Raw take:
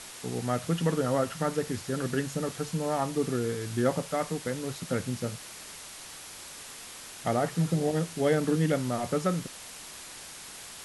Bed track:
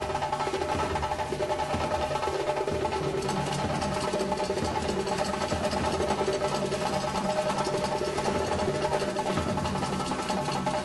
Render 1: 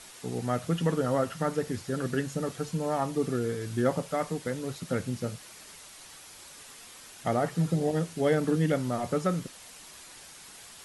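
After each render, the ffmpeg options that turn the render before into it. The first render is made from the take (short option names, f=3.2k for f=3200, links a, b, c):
-af "afftdn=nr=6:nf=-45"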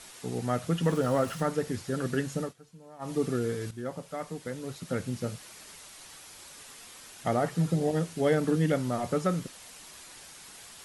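-filter_complex "[0:a]asettb=1/sr,asplit=3[a][b][c];[a]atrim=end=0.834[d];[b]atrim=start=0.83:end=1.43,asetpts=PTS-STARTPTS,afade=t=in:d=0.004:c=qsin,afade=t=out:st=0.596:d=0.004:c=qsin,aeval=exprs='val(0)+0.5*0.00891*sgn(val(0))':c=same[e];[c]atrim=start=1.426[f];[d][e]acrossfade=d=0.004:c1=hsin:c2=qsin[g];[g][f]acrossfade=d=0.004:c1=qsin:c2=hsin,asplit=4[h][i][j][k];[h]atrim=end=2.54,asetpts=PTS-STARTPTS,afade=t=out:st=2.41:d=0.13:silence=0.0944061[l];[i]atrim=start=2.54:end=2.99,asetpts=PTS-STARTPTS,volume=-20.5dB[m];[j]atrim=start=2.99:end=3.71,asetpts=PTS-STARTPTS,afade=t=in:d=0.13:silence=0.0944061,afade=t=out:st=0.716:d=0.004:c=hsin:silence=0.237137[n];[k]atrim=start=3.71,asetpts=PTS-STARTPTS,afade=t=in:d=1.6:silence=0.237137[o];[l][m][n][o]concat=n=4:v=0:a=1"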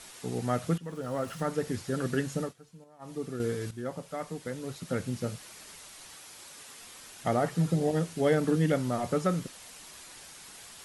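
-filter_complex "[0:a]asettb=1/sr,asplit=3[a][b][c];[a]atrim=end=6.144[d];[b]atrim=start=6.14:end=6.8,asetpts=PTS-STARTPTS,afade=t=in:d=0.004:c=qsin,afade=t=out:st=0.656:d=0.004:c=qsin,highpass=f=110:p=1[e];[c]atrim=start=6.796[f];[d][e]acrossfade=d=0.004:c1=hsin:c2=qsin[g];[g][f]acrossfade=d=0.004:c1=qsin:c2=hsin,asplit=4[h][i][j][k];[h]atrim=end=0.78,asetpts=PTS-STARTPTS,afade=t=out:st=0.776:d=0.004:c=hsin:silence=0.112202[l];[i]atrim=start=0.78:end=2.842,asetpts=PTS-STARTPTS,afade=t=in:d=0.93:silence=0.112202[m];[j]atrim=start=2.838:end=3.402,asetpts=PTS-STARTPTS,volume=-7.5dB[n];[k]atrim=start=3.398[o];[l][m]concat=n=2:v=0:a=1[p];[p][n]acrossfade=d=0.004:c1=hsin:c2=hsin[q];[q][o]acrossfade=d=0.004:c1=hsin:c2=hsin"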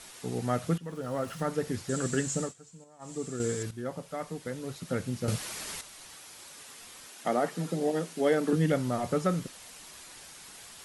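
-filter_complex "[0:a]asettb=1/sr,asplit=3[a][b][c];[a]atrim=end=1.894[d];[b]atrim=start=1.89:end=3.63,asetpts=PTS-STARTPTS,afade=t=in:d=0.004:c=qsin,afade=t=out:st=1.736:d=0.004:c=qsin,lowpass=f=7.6k:t=q:w=7.9[e];[c]atrim=start=3.626[f];[d][e]acrossfade=d=0.004:c1=hsin:c2=qsin[g];[g][f]acrossfade=d=0.004:c1=qsin:c2=hsin,asettb=1/sr,asplit=3[h][i][j];[h]atrim=end=7.074[k];[i]atrim=start=7.07:end=8.53,asetpts=PTS-STARTPTS,afade=t=in:d=0.004:c=qsin,afade=t=out:st=1.456:d=0.004:c=qsin,highpass=f=200:w=0.5412,highpass=f=200:w=1.3066[l];[j]atrim=start=8.526[m];[k][l]acrossfade=d=0.004:c1=hsin:c2=qsin[n];[n][m]acrossfade=d=0.004:c1=qsin:c2=hsin,asplit=3[o][p][q];[o]atrim=end=5.282[r];[p]atrim=start=5.278:end=5.812,asetpts=PTS-STARTPTS,volume=9.5dB[s];[q]atrim=start=5.808[t];[r][s]acrossfade=d=0.004:c1=hsin:c2=hsin[u];[u][t]acrossfade=d=0.004:c1=hsin:c2=hsin"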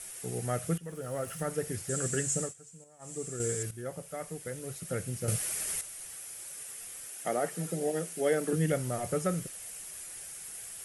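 -af "equalizer=f=250:t=o:w=0.67:g=-9,equalizer=f=1k:t=o:w=0.67:g=-9,equalizer=f=4k:t=o:w=0.67:g=-8,equalizer=f=10k:t=o:w=0.67:g=11"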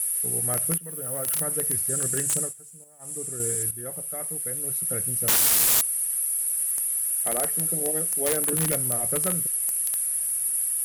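-af "aexciter=amount=8:drive=9.4:freq=9.7k,aeval=exprs='(mod(5.31*val(0)+1,2)-1)/5.31':c=same"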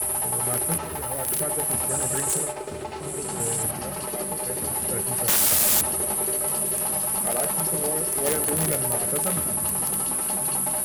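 -filter_complex "[1:a]volume=-5dB[a];[0:a][a]amix=inputs=2:normalize=0"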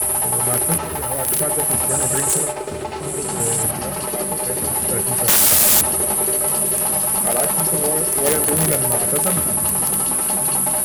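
-af "volume=6.5dB"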